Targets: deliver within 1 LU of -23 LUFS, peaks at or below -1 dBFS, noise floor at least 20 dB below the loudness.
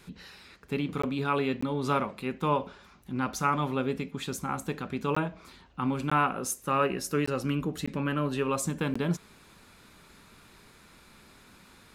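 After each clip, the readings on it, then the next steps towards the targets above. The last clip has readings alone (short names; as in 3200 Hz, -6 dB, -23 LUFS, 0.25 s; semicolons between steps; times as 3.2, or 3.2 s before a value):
dropouts 7; longest dropout 15 ms; loudness -30.5 LUFS; peak -13.0 dBFS; loudness target -23.0 LUFS
-> interpolate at 1.02/1.61/5.15/6.1/7.26/7.86/8.94, 15 ms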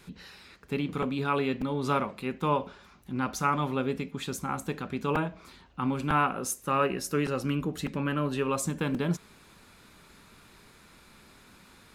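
dropouts 0; loudness -30.0 LUFS; peak -13.0 dBFS; loudness target -23.0 LUFS
-> gain +7 dB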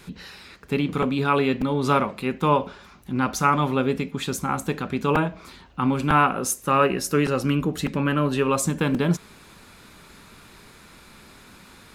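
loudness -23.0 LUFS; peak -6.0 dBFS; noise floor -49 dBFS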